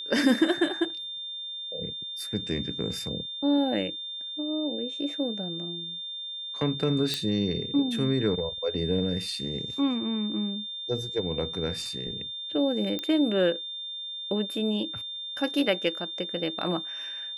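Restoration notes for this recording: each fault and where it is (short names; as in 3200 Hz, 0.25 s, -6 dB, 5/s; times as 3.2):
tone 3600 Hz -34 dBFS
7.14 pop -13 dBFS
12.99 pop -17 dBFS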